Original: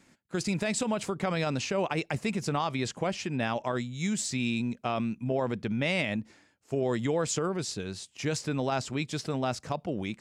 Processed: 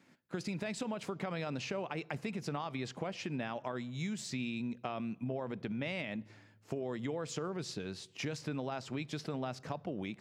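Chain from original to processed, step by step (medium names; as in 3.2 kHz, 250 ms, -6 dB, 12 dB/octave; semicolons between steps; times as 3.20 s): recorder AGC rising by 15 dB/s; high-pass 110 Hz; peaking EQ 8.2 kHz -9.5 dB 1.1 oct; compression, threshold -30 dBFS, peak gain reduction 7 dB; on a send: reverberation RT60 1.1 s, pre-delay 3 ms, DRR 22.5 dB; on the sum: trim -4 dB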